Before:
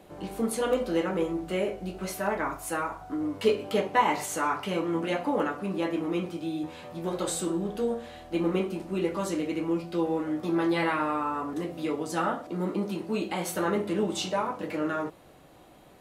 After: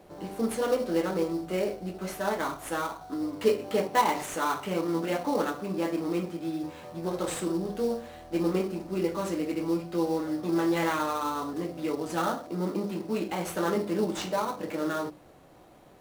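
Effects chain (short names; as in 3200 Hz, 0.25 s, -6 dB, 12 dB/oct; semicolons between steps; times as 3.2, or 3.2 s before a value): notches 50/100/150/200/250/300 Hz; in parallel at -3 dB: sample-rate reducer 5000 Hz, jitter 20%; on the sum: gain -4.5 dB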